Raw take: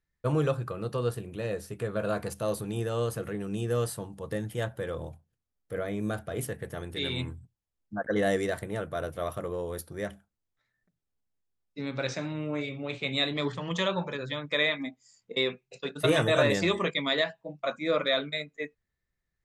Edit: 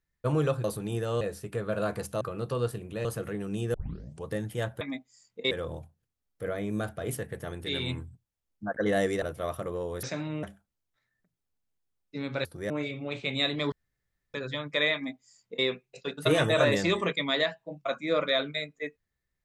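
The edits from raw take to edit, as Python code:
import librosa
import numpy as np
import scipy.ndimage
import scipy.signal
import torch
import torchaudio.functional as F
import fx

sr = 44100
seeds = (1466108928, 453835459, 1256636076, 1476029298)

y = fx.edit(x, sr, fx.swap(start_s=0.64, length_s=0.84, other_s=2.48, other_length_s=0.57),
    fx.tape_start(start_s=3.74, length_s=0.51),
    fx.cut(start_s=8.52, length_s=0.48),
    fx.swap(start_s=9.81, length_s=0.25, other_s=12.08, other_length_s=0.4),
    fx.room_tone_fill(start_s=13.5, length_s=0.62),
    fx.duplicate(start_s=14.73, length_s=0.7, to_s=4.81), tone=tone)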